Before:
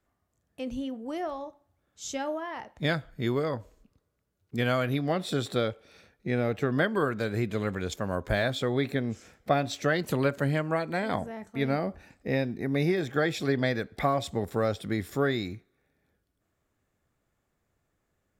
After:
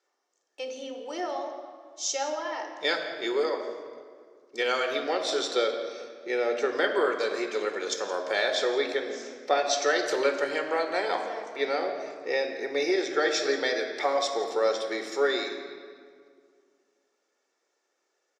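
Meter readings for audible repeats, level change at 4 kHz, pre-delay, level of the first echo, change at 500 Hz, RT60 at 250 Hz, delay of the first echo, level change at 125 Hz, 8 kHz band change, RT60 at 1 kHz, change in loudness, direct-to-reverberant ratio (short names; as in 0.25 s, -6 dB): 1, +6.5 dB, 3 ms, -17.5 dB, +3.0 dB, 2.4 s, 0.169 s, under -30 dB, +9.0 dB, 1.9 s, +1.5 dB, 4.0 dB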